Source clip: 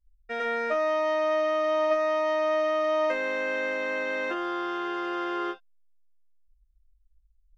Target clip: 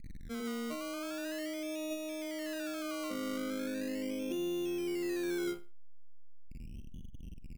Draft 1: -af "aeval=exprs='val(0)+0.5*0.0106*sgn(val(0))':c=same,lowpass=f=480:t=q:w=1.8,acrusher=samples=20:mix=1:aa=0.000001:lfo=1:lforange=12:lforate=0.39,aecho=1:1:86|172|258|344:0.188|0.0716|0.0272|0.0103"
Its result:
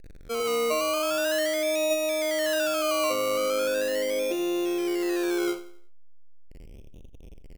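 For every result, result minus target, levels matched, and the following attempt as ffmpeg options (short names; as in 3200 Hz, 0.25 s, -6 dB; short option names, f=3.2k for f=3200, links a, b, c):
echo 40 ms late; 250 Hz band -6.0 dB
-af "aeval=exprs='val(0)+0.5*0.0106*sgn(val(0))':c=same,lowpass=f=480:t=q:w=1.8,acrusher=samples=20:mix=1:aa=0.000001:lfo=1:lforange=12:lforate=0.39,aecho=1:1:46|92|138|184:0.188|0.0716|0.0272|0.0103"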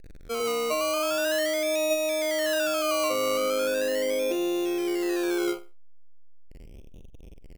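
250 Hz band -6.0 dB
-af "aeval=exprs='val(0)+0.5*0.0106*sgn(val(0))':c=same,lowpass=f=230:t=q:w=1.8,acrusher=samples=20:mix=1:aa=0.000001:lfo=1:lforange=12:lforate=0.39,aecho=1:1:46|92|138|184:0.188|0.0716|0.0272|0.0103"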